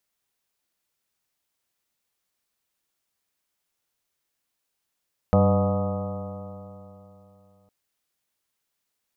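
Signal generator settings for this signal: stretched partials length 2.36 s, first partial 95.9 Hz, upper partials 0/-14.5/-19/-3/-3/-9/-13/-18/-18.5/-11.5 dB, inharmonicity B 0.0033, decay 3.15 s, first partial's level -18.5 dB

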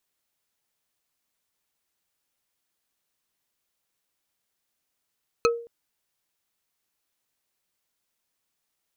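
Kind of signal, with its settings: wood hit bar, length 0.22 s, lowest mode 468 Hz, decay 0.45 s, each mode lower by 2 dB, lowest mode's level -15.5 dB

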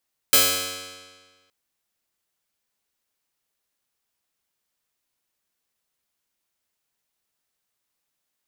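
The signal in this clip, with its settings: plucked string F#2, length 1.17 s, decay 1.53 s, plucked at 0.1, bright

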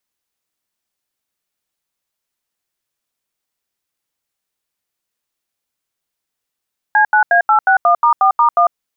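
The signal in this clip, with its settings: DTMF "C9A861*4*1", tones 99 ms, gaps 81 ms, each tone -10.5 dBFS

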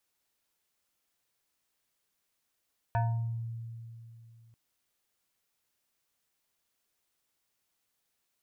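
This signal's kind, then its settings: FM tone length 1.59 s, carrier 115 Hz, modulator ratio 7.06, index 1.2, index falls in 0.65 s exponential, decay 2.91 s, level -24 dB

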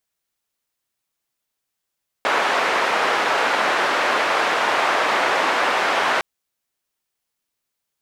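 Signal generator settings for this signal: noise band 510–1500 Hz, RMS -19.5 dBFS 3.96 s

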